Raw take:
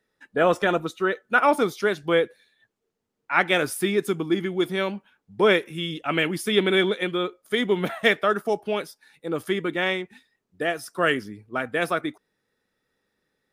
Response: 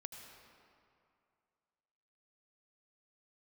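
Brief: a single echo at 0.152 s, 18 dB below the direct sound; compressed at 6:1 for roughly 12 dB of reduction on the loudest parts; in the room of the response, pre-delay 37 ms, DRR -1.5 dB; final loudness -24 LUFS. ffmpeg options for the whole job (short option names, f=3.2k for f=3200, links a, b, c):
-filter_complex "[0:a]acompressor=threshold=-27dB:ratio=6,aecho=1:1:152:0.126,asplit=2[a][b];[1:a]atrim=start_sample=2205,adelay=37[c];[b][c]afir=irnorm=-1:irlink=0,volume=5.5dB[d];[a][d]amix=inputs=2:normalize=0,volume=4.5dB"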